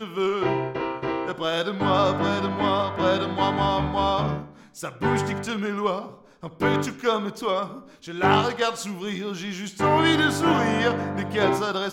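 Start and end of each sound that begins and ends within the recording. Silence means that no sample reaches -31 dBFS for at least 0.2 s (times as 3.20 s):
4.77–6.07 s
6.43–7.78 s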